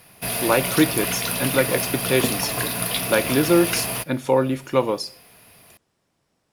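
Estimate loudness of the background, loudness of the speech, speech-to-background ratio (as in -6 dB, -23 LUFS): -24.0 LUFS, -22.5 LUFS, 1.5 dB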